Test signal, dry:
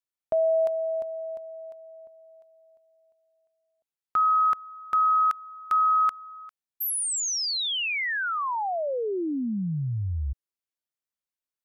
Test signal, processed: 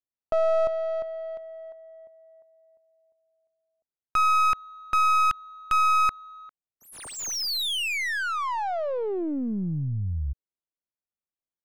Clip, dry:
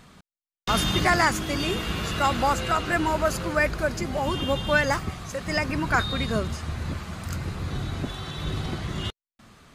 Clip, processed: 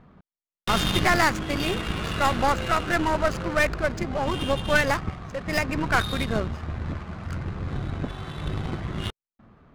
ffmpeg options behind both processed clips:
ffmpeg -i in.wav -af "adynamicsmooth=sensitivity=7:basefreq=1100,aeval=exprs='0.422*(cos(1*acos(clip(val(0)/0.422,-1,1)))-cos(1*PI/2))+0.0473*(cos(6*acos(clip(val(0)/0.422,-1,1)))-cos(6*PI/2))':channel_layout=same" out.wav

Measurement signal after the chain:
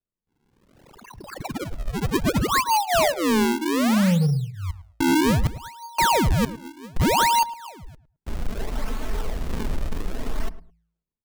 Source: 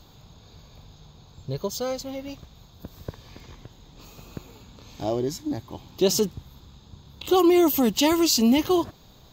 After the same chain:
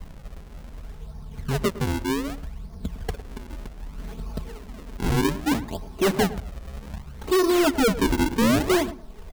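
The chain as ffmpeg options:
ffmpeg -i in.wav -filter_complex "[0:a]lowpass=2100,aemphasis=mode=reproduction:type=50kf,bandreject=frequency=55.97:width_type=h:width=4,bandreject=frequency=111.94:width_type=h:width=4,bandreject=frequency=167.91:width_type=h:width=4,adynamicequalizer=threshold=0.0178:dfrequency=390:dqfactor=3.1:tfrequency=390:tqfactor=3.1:attack=5:release=100:ratio=0.375:range=2:mode=boostabove:tftype=bell,aecho=1:1:4.6:0.95,acrossover=split=120|1000[link_01][link_02][link_03];[link_01]acontrast=64[link_04];[link_04][link_02][link_03]amix=inputs=3:normalize=0,aphaser=in_gain=1:out_gain=1:delay=4:decay=0.46:speed=0.73:type=triangular,asplit=2[link_05][link_06];[link_06]asoftclip=type=tanh:threshold=-20dB,volume=-8dB[link_07];[link_05][link_07]amix=inputs=2:normalize=0,acrusher=samples=41:mix=1:aa=0.000001:lfo=1:lforange=65.6:lforate=0.64,asoftclip=type=hard:threshold=-17dB,asplit=2[link_08][link_09];[link_09]adelay=107,lowpass=frequency=1200:poles=1,volume=-14dB,asplit=2[link_10][link_11];[link_11]adelay=107,lowpass=frequency=1200:poles=1,volume=0.21[link_12];[link_08][link_10][link_12]amix=inputs=3:normalize=0" out.wav

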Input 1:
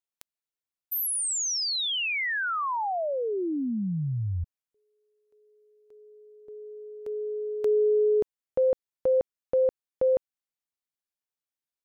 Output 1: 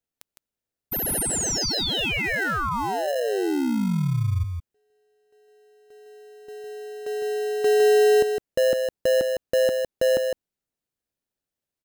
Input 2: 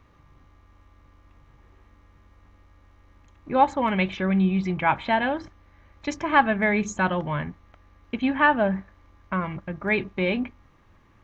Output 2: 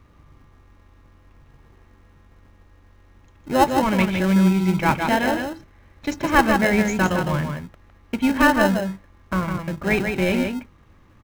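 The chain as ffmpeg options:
ffmpeg -i in.wav -filter_complex "[0:a]aecho=1:1:158:0.531,asplit=2[link_01][link_02];[link_02]acrusher=samples=38:mix=1:aa=0.000001,volume=-5dB[link_03];[link_01][link_03]amix=inputs=2:normalize=0,volume=1dB" out.wav

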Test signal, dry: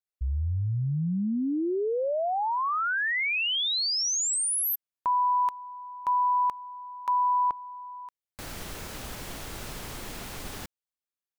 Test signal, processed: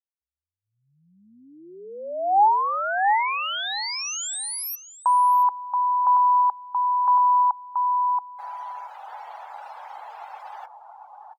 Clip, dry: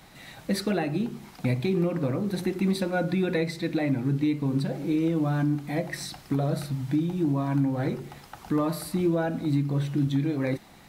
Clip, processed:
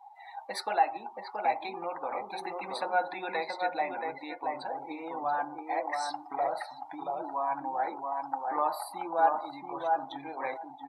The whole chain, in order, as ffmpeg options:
ffmpeg -i in.wav -filter_complex "[0:a]highpass=frequency=830:width_type=q:width=6.7,asplit=2[link_01][link_02];[link_02]adelay=678,lowpass=frequency=1900:poles=1,volume=-3dB,asplit=2[link_03][link_04];[link_04]adelay=678,lowpass=frequency=1900:poles=1,volume=0.18,asplit=2[link_05][link_06];[link_06]adelay=678,lowpass=frequency=1900:poles=1,volume=0.18[link_07];[link_01][link_03][link_05][link_07]amix=inputs=4:normalize=0,afftdn=noise_reduction=27:noise_floor=-40,volume=-3.5dB" out.wav

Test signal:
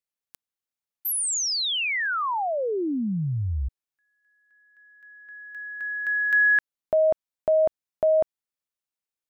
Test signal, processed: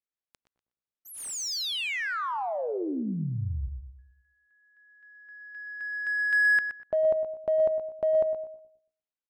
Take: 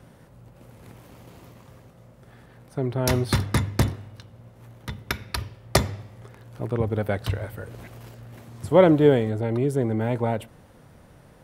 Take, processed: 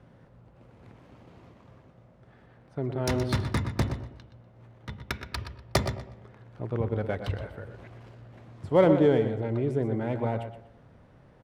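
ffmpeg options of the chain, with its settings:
ffmpeg -i in.wav -filter_complex "[0:a]asplit=2[link_01][link_02];[link_02]aecho=0:1:122|244|366:0.316|0.0727|0.0167[link_03];[link_01][link_03]amix=inputs=2:normalize=0,adynamicsmooth=sensitivity=3.5:basefreq=4100,asplit=2[link_04][link_05];[link_05]adelay=106,lowpass=frequency=880:poles=1,volume=-11dB,asplit=2[link_06][link_07];[link_07]adelay=106,lowpass=frequency=880:poles=1,volume=0.45,asplit=2[link_08][link_09];[link_09]adelay=106,lowpass=frequency=880:poles=1,volume=0.45,asplit=2[link_10][link_11];[link_11]adelay=106,lowpass=frequency=880:poles=1,volume=0.45,asplit=2[link_12][link_13];[link_13]adelay=106,lowpass=frequency=880:poles=1,volume=0.45[link_14];[link_06][link_08][link_10][link_12][link_14]amix=inputs=5:normalize=0[link_15];[link_04][link_15]amix=inputs=2:normalize=0,volume=-5dB" out.wav

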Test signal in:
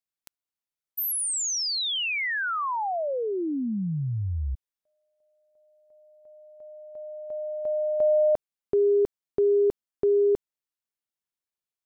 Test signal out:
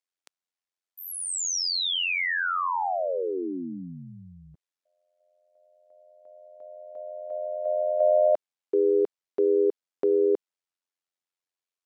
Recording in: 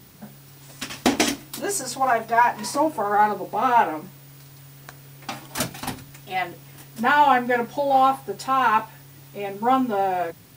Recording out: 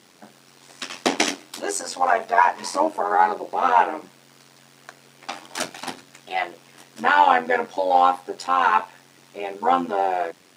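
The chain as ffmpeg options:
ffmpeg -i in.wav -af "tremolo=f=89:d=0.788,highpass=340,lowpass=7900,volume=4.5dB" out.wav

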